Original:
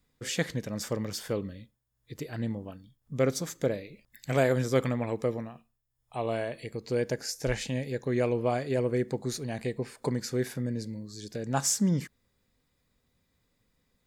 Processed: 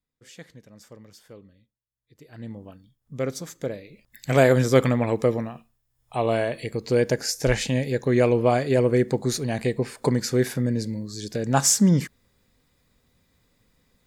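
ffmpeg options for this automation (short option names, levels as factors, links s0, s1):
-af "volume=2.51,afade=t=in:st=2.18:d=0.46:silence=0.223872,afade=t=in:st=3.82:d=0.63:silence=0.334965"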